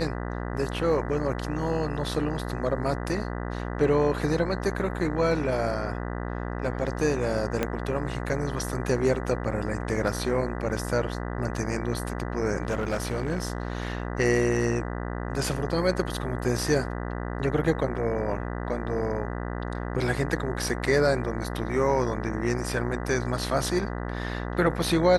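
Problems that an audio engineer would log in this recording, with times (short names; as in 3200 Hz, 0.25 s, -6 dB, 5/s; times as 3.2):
buzz 60 Hz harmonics 33 -32 dBFS
7.63 pop -11 dBFS
12.63–14.05 clipped -22 dBFS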